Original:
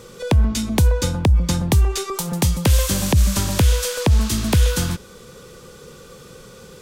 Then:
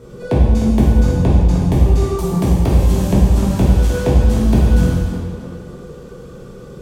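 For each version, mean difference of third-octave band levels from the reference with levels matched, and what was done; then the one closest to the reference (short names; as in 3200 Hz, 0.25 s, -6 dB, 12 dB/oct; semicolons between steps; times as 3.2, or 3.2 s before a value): 9.0 dB: tilt shelf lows +8.5 dB, about 1100 Hz; compressor 2.5:1, threshold -13 dBFS, peak gain reduction 7.5 dB; on a send: tape echo 0.303 s, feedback 51%, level -7.5 dB, low-pass 3600 Hz; on the sum: non-linear reverb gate 0.42 s falling, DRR -7 dB; gain -6.5 dB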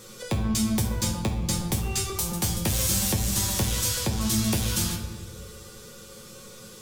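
6.0 dB: high shelf 3600 Hz +10 dB; soft clip -13 dBFS, distortion -13 dB; resonator 110 Hz, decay 0.16 s, harmonics all, mix 90%; shoebox room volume 930 m³, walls mixed, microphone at 1 m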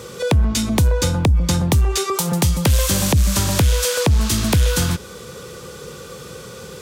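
3.0 dB: HPF 55 Hz 24 dB/oct; bell 230 Hz -3 dB 0.77 oct; in parallel at +2 dB: compressor, threshold -23 dBFS, peak gain reduction 10.5 dB; on the sum: soft clip -8 dBFS, distortion -19 dB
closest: third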